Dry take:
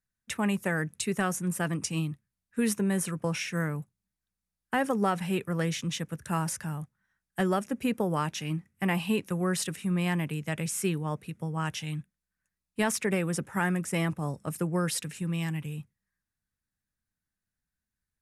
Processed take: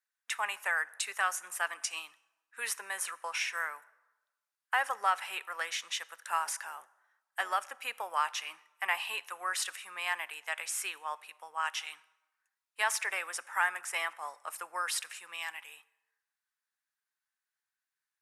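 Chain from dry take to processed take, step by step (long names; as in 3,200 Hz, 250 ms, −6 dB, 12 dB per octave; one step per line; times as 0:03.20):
0:06.18–0:07.60: sub-octave generator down 1 octave, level +1 dB
high-pass filter 870 Hz 24 dB per octave
high-shelf EQ 3,900 Hz −6.5 dB
on a send: convolution reverb RT60 1.1 s, pre-delay 18 ms, DRR 20 dB
on the sum: level +3.5 dB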